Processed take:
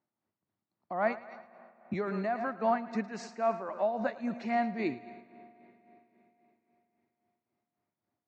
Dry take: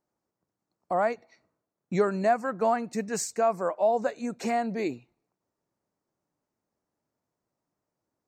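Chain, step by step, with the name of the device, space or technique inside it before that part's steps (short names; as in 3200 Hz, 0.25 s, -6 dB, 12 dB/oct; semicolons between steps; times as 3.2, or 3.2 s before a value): 1.93–3.69 Chebyshev high-pass 250 Hz, order 2; thinning echo 0.11 s, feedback 51%, high-pass 420 Hz, level -12 dB; combo amplifier with spring reverb and tremolo (spring tank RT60 4 s, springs 42/52 ms, chirp 55 ms, DRR 17 dB; tremolo 3.7 Hz, depth 58%; speaker cabinet 93–4400 Hz, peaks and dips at 99 Hz +7 dB, 220 Hz +4 dB, 480 Hz -7 dB, 2000 Hz +4 dB); gain -1.5 dB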